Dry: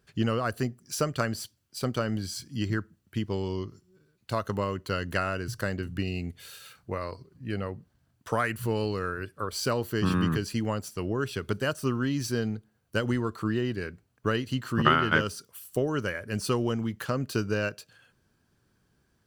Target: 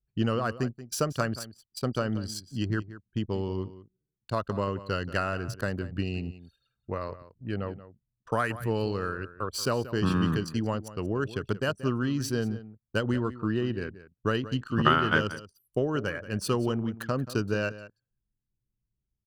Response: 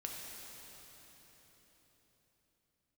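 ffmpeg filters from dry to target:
-filter_complex "[0:a]anlmdn=1.58,equalizer=frequency=2100:width_type=o:width=0.23:gain=-7.5,asplit=2[link_01][link_02];[link_02]adelay=180.8,volume=-15dB,highshelf=frequency=4000:gain=-4.07[link_03];[link_01][link_03]amix=inputs=2:normalize=0"

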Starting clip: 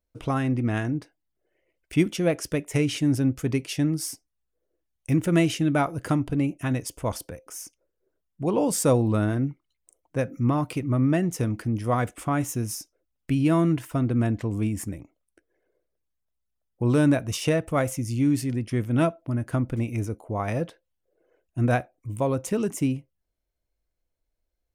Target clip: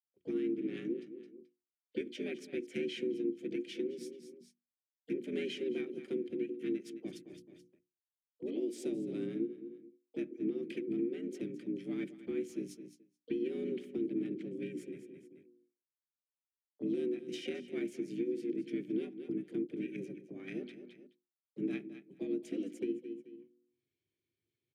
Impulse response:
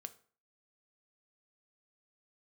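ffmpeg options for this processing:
-filter_complex "[0:a]asplit=3[link_01][link_02][link_03];[link_01]bandpass=frequency=270:width_type=q:width=8,volume=0dB[link_04];[link_02]bandpass=frequency=2290:width_type=q:width=8,volume=-6dB[link_05];[link_03]bandpass=frequency=3010:width_type=q:width=8,volume=-9dB[link_06];[link_04][link_05][link_06]amix=inputs=3:normalize=0,agate=range=-52dB:threshold=-48dB:ratio=16:detection=peak,asplit=2[link_07][link_08];[link_08]aecho=0:1:216|432:0.168|0.0319[link_09];[link_07][link_09]amix=inputs=2:normalize=0,acompressor=threshold=-31dB:ratio=8,afreqshift=82,highpass=55,equalizer=frequency=860:width_type=o:width=2.9:gain=-11.5,bandreject=frequency=60:width_type=h:width=6,bandreject=frequency=120:width_type=h:width=6,bandreject=frequency=180:width_type=h:width=6,bandreject=frequency=240:width_type=h:width=6,bandreject=frequency=300:width_type=h:width=6,bandreject=frequency=360:width_type=h:width=6,areverse,acompressor=mode=upward:threshold=-50dB:ratio=2.5,areverse,asplit=4[link_10][link_11][link_12][link_13];[link_11]asetrate=29433,aresample=44100,atempo=1.49831,volume=-15dB[link_14];[link_12]asetrate=35002,aresample=44100,atempo=1.25992,volume=-9dB[link_15];[link_13]asetrate=58866,aresample=44100,atempo=0.749154,volume=-16dB[link_16];[link_10][link_14][link_15][link_16]amix=inputs=4:normalize=0,lowshelf=frequency=86:gain=11,volume=4.5dB"

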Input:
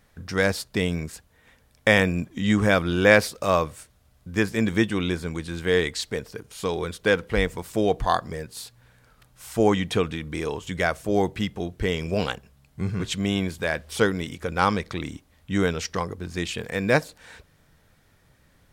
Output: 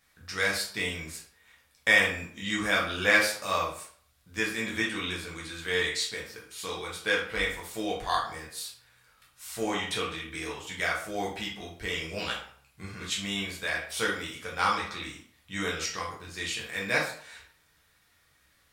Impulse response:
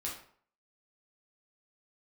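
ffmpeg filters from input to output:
-filter_complex "[0:a]tiltshelf=frequency=780:gain=-8[link_01];[1:a]atrim=start_sample=2205[link_02];[link_01][link_02]afir=irnorm=-1:irlink=0,volume=-7.5dB"

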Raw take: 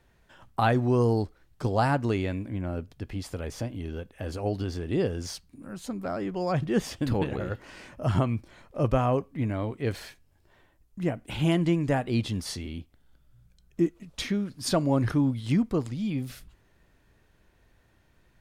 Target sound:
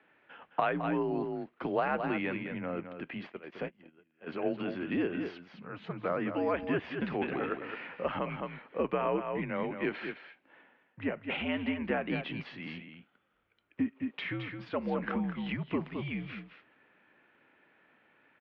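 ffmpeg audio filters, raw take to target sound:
ffmpeg -i in.wav -filter_complex "[0:a]crystalizer=i=5.5:c=0,aecho=1:1:214:0.335,asplit=3[link_01][link_02][link_03];[link_01]afade=type=out:start_time=3.23:duration=0.02[link_04];[link_02]agate=range=-27dB:threshold=-29dB:ratio=16:detection=peak,afade=type=in:start_time=3.23:duration=0.02,afade=type=out:start_time=4.26:duration=0.02[link_05];[link_03]afade=type=in:start_time=4.26:duration=0.02[link_06];[link_04][link_05][link_06]amix=inputs=3:normalize=0,acompressor=threshold=-24dB:ratio=10,highpass=frequency=280:width_type=q:width=0.5412,highpass=frequency=280:width_type=q:width=1.307,lowpass=frequency=2700:width_type=q:width=0.5176,lowpass=frequency=2700:width_type=q:width=0.7071,lowpass=frequency=2700:width_type=q:width=1.932,afreqshift=-77" out.wav

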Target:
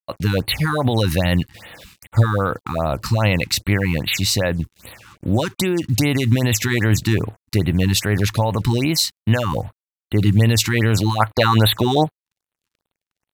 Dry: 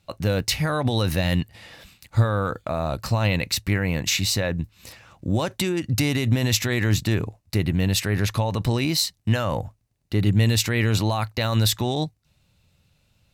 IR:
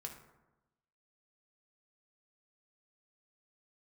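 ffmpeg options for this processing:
-af "asetnsamples=nb_out_samples=441:pad=0,asendcmd='11.2 equalizer g 11',equalizer=frequency=890:width=0.49:gain=2,acrusher=bits=7:mix=0:aa=0.5,afftfilt=real='re*(1-between(b*sr/1024,520*pow(6500/520,0.5+0.5*sin(2*PI*2.5*pts/sr))/1.41,520*pow(6500/520,0.5+0.5*sin(2*PI*2.5*pts/sr))*1.41))':imag='im*(1-between(b*sr/1024,520*pow(6500/520,0.5+0.5*sin(2*PI*2.5*pts/sr))/1.41,520*pow(6500/520,0.5+0.5*sin(2*PI*2.5*pts/sr))*1.41))':win_size=1024:overlap=0.75,volume=4dB"

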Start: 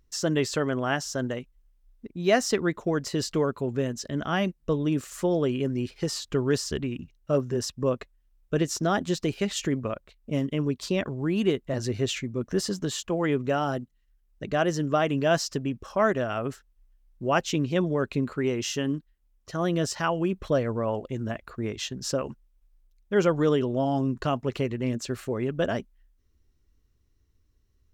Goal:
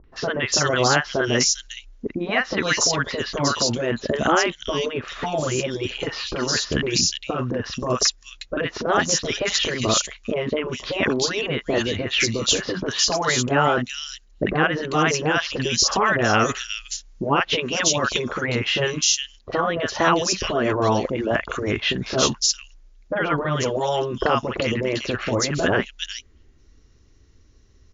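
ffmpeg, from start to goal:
ffmpeg -i in.wav -filter_complex "[0:a]asettb=1/sr,asplit=3[link_01][link_02][link_03];[link_01]atrim=end=15.634[link_04];[link_02]atrim=start=15.63:end=18.01,asetpts=PTS-STARTPTS,afade=type=in:duration=0.004:curve=qsin,afade=type=out:start_time=2.376:duration=0.004:curve=qsin,highshelf=frequency=3900:gain=10[link_05];[link_03]atrim=start=18.006[link_06];[link_04][link_05]acrossfade=duration=0.004:curve1=hsin:curve2=qsin[link_07];[link_07][link_06]acrossfade=duration=0.004:curve1=qsin:curve2=hsin,acrossover=split=1000|3100[link_08][link_09][link_10];[link_09]adelay=40[link_11];[link_10]adelay=400[link_12];[link_08][link_11][link_12]amix=inputs=3:normalize=0,acompressor=threshold=-28dB:ratio=4,afftfilt=real='re*lt(hypot(re,im),0.141)':imag='im*lt(hypot(re,im),0.141)':win_size=1024:overlap=0.75,lowshelf=frequency=210:gain=-6.5,alimiter=level_in=24.5dB:limit=-1dB:release=50:level=0:latency=1,volume=-5.5dB" -ar 16000 -c:a libmp3lame -b:a 96k out.mp3

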